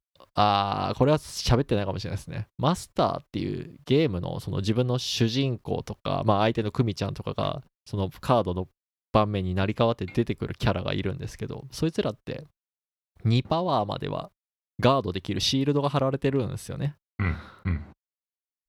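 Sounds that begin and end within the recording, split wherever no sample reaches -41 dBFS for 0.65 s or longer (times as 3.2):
13.25–17.9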